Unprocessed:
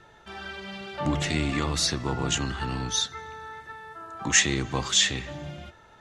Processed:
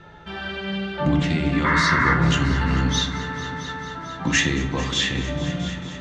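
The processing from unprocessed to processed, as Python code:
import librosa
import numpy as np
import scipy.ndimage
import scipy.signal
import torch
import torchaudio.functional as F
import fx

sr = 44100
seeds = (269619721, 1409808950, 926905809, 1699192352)

p1 = scipy.signal.sosfilt(scipy.signal.butter(2, 3500.0, 'lowpass', fs=sr, output='sos'), x)
p2 = fx.peak_eq(p1, sr, hz=1100.0, db=-5.0, octaves=2.9)
p3 = fx.rider(p2, sr, range_db=4, speed_s=0.5)
p4 = fx.spec_paint(p3, sr, seeds[0], shape='noise', start_s=1.64, length_s=0.5, low_hz=920.0, high_hz=2200.0, level_db=-27.0)
p5 = p4 + fx.echo_heads(p4, sr, ms=223, heads='all three', feedback_pct=61, wet_db=-17.5, dry=0)
p6 = fx.rev_fdn(p5, sr, rt60_s=0.89, lf_ratio=1.3, hf_ratio=0.45, size_ms=34.0, drr_db=3.0)
y = F.gain(torch.from_numpy(p6), 5.5).numpy()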